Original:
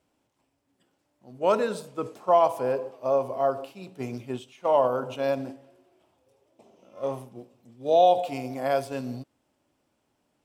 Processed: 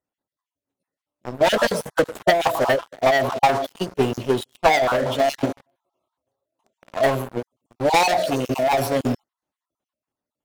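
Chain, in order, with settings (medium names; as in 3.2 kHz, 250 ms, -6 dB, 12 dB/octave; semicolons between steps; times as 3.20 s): random holes in the spectrogram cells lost 34%; waveshaping leveller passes 5; transient shaper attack +8 dB, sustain +4 dB; formant shift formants +3 st; trim -6 dB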